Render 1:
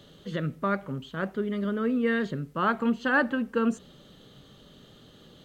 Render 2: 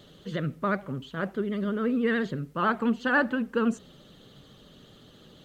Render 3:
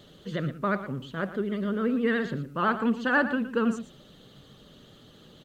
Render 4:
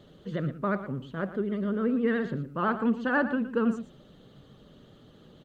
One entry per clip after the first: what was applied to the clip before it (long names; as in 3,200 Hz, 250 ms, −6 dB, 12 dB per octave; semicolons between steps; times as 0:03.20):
pitch vibrato 14 Hz 73 cents; floating-point word with a short mantissa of 8 bits
single-tap delay 115 ms −12.5 dB
high-shelf EQ 2,100 Hz −10.5 dB